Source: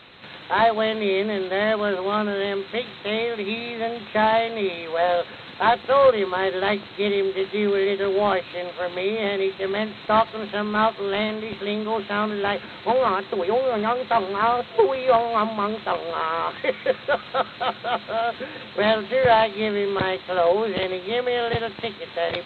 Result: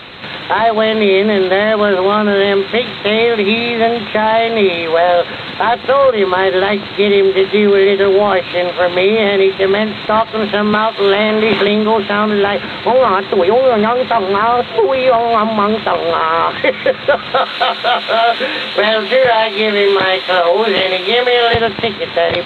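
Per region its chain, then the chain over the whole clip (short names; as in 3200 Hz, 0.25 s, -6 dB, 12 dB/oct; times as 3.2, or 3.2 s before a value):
10.73–11.68 low shelf 200 Hz -8 dB + three-band squash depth 100%
17.37–21.55 HPF 410 Hz 6 dB/oct + high shelf 3800 Hz +8 dB + doubler 23 ms -4.5 dB
whole clip: compressor 6:1, threshold -21 dBFS; maximiser +16 dB; gain -1 dB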